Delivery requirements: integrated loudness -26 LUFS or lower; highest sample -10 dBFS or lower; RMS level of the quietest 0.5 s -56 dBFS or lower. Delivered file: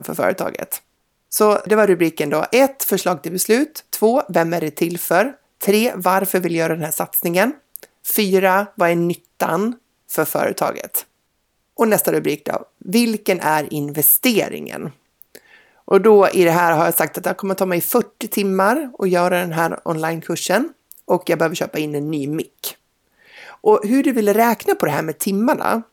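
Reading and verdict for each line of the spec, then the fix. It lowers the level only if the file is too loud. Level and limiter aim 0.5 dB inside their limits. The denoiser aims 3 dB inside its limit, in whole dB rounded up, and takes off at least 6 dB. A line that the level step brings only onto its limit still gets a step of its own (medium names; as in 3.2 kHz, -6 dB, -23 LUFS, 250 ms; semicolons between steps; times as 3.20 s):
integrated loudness -18.0 LUFS: fail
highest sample -2.5 dBFS: fail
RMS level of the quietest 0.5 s -68 dBFS: pass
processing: trim -8.5 dB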